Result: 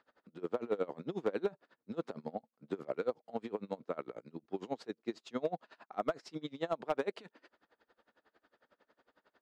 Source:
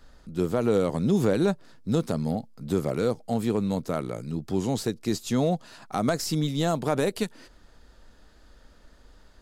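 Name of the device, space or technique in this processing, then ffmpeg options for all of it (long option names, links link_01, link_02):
helicopter radio: -af "highpass=370,lowpass=2500,aeval=exprs='val(0)*pow(10,-26*(0.5-0.5*cos(2*PI*11*n/s))/20)':channel_layout=same,asoftclip=type=hard:threshold=-20dB,volume=-2.5dB"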